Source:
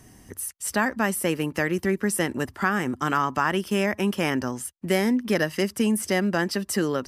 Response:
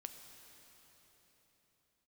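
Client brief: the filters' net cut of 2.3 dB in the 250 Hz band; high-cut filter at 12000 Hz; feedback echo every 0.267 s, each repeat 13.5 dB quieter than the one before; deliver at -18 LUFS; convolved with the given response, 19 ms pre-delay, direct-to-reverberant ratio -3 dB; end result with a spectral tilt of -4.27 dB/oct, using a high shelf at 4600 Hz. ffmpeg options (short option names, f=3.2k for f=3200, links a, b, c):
-filter_complex "[0:a]lowpass=12k,equalizer=f=250:t=o:g=-3,highshelf=f=4.6k:g=6.5,aecho=1:1:267|534:0.211|0.0444,asplit=2[a][b];[1:a]atrim=start_sample=2205,adelay=19[c];[b][c]afir=irnorm=-1:irlink=0,volume=7.5dB[d];[a][d]amix=inputs=2:normalize=0,volume=2dB"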